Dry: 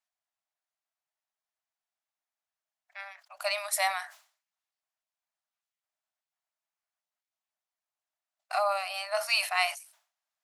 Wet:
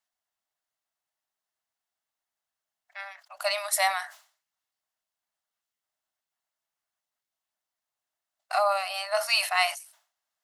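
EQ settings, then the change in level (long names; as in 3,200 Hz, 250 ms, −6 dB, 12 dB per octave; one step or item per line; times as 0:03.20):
notch filter 2,400 Hz, Q 13
+3.5 dB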